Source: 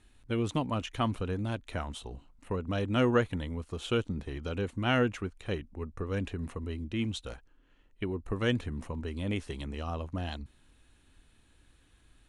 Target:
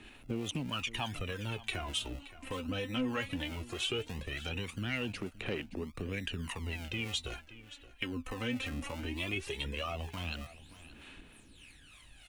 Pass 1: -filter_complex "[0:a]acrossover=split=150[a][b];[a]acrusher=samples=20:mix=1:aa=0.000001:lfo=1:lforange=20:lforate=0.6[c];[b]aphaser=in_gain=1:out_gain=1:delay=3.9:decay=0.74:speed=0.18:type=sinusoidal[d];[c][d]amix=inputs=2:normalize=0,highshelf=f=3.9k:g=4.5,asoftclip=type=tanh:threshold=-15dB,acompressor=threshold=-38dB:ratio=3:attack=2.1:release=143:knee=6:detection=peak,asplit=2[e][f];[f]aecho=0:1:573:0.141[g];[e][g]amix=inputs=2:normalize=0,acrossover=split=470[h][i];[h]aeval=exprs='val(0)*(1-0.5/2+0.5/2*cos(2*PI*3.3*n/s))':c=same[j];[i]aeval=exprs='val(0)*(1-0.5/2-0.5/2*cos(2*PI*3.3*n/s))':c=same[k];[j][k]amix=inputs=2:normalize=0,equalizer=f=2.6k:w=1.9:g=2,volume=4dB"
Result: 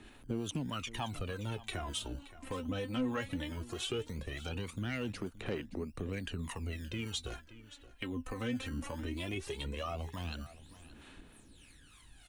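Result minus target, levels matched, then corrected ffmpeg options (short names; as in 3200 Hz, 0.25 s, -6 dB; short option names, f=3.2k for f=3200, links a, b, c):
decimation with a swept rate: distortion -8 dB; 2000 Hz band -3.5 dB
-filter_complex "[0:a]acrossover=split=150[a][b];[a]acrusher=samples=46:mix=1:aa=0.000001:lfo=1:lforange=46:lforate=0.6[c];[b]aphaser=in_gain=1:out_gain=1:delay=3.9:decay=0.74:speed=0.18:type=sinusoidal[d];[c][d]amix=inputs=2:normalize=0,highshelf=f=3.9k:g=4.5,asoftclip=type=tanh:threshold=-15dB,acompressor=threshold=-38dB:ratio=3:attack=2.1:release=143:knee=6:detection=peak,asplit=2[e][f];[f]aecho=0:1:573:0.141[g];[e][g]amix=inputs=2:normalize=0,acrossover=split=470[h][i];[h]aeval=exprs='val(0)*(1-0.5/2+0.5/2*cos(2*PI*3.3*n/s))':c=same[j];[i]aeval=exprs='val(0)*(1-0.5/2-0.5/2*cos(2*PI*3.3*n/s))':c=same[k];[j][k]amix=inputs=2:normalize=0,equalizer=f=2.6k:w=1.9:g=10,volume=4dB"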